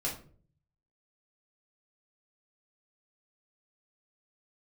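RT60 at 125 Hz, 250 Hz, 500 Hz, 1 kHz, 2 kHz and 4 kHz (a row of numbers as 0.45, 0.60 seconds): 1.0, 0.70, 0.55, 0.35, 0.35, 0.25 seconds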